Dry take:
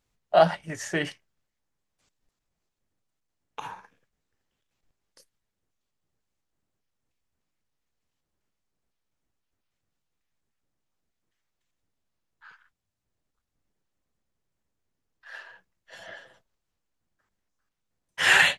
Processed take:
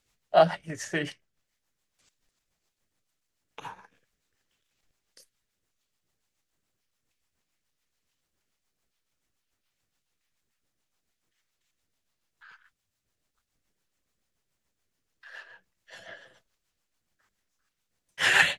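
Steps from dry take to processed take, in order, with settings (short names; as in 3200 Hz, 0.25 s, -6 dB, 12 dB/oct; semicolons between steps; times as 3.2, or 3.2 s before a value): rotary speaker horn 7 Hz; mismatched tape noise reduction encoder only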